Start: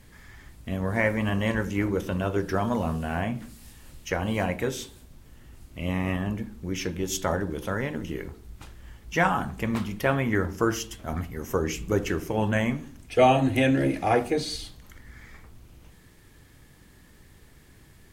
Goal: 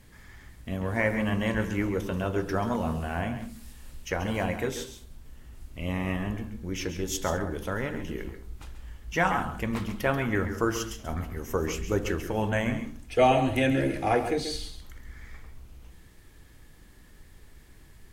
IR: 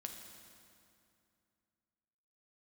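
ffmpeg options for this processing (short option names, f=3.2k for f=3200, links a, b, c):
-filter_complex "[0:a]asplit=2[a][b];[1:a]atrim=start_sample=2205,atrim=end_sample=3528,adelay=135[c];[b][c]afir=irnorm=-1:irlink=0,volume=-5.5dB[d];[a][d]amix=inputs=2:normalize=0,asubboost=boost=2:cutoff=68,volume=-2dB"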